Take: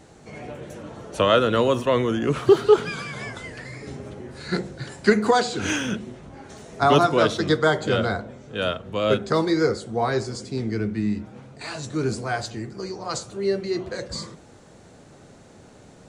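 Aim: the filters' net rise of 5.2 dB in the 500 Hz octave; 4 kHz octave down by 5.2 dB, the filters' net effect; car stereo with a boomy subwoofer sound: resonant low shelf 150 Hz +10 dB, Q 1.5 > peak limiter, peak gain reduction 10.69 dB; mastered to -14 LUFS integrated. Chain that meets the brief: resonant low shelf 150 Hz +10 dB, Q 1.5; peaking EQ 500 Hz +7.5 dB; peaking EQ 4 kHz -7 dB; trim +9 dB; peak limiter -1.5 dBFS

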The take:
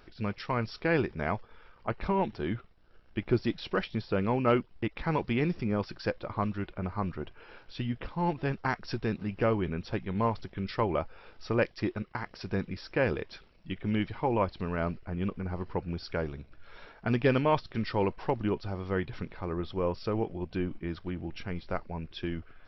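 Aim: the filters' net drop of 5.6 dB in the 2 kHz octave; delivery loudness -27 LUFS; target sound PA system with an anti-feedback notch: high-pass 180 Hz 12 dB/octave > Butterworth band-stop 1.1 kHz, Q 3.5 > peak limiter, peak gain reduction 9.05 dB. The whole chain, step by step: high-pass 180 Hz 12 dB/octave; Butterworth band-stop 1.1 kHz, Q 3.5; peaking EQ 2 kHz -7.5 dB; trim +10.5 dB; peak limiter -13 dBFS

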